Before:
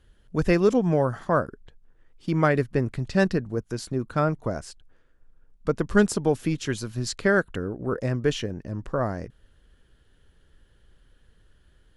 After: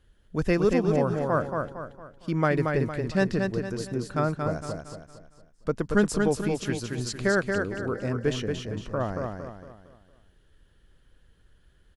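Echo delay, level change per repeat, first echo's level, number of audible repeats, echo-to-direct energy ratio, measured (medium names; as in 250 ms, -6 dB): 229 ms, -8.0 dB, -4.5 dB, 4, -3.5 dB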